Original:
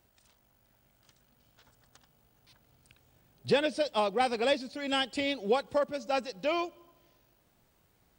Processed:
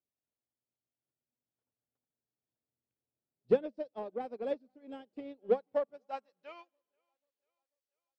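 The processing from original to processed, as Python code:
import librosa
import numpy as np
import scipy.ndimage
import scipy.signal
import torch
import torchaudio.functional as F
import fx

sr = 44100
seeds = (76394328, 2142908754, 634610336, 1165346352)

p1 = fx.filter_sweep_bandpass(x, sr, from_hz=410.0, to_hz=5000.0, start_s=5.45, end_s=7.66, q=1.2)
p2 = fx.bass_treble(p1, sr, bass_db=8, treble_db=4)
p3 = 10.0 ** (-29.0 / 20.0) * np.tanh(p2 / 10.0 ** (-29.0 / 20.0))
p4 = p2 + (p3 * librosa.db_to_amplitude(-5.0))
p5 = fx.hum_notches(p4, sr, base_hz=50, count=4)
p6 = p5 + fx.echo_thinned(p5, sr, ms=490, feedback_pct=58, hz=210.0, wet_db=-22.0, dry=0)
y = fx.upward_expand(p6, sr, threshold_db=-40.0, expansion=2.5)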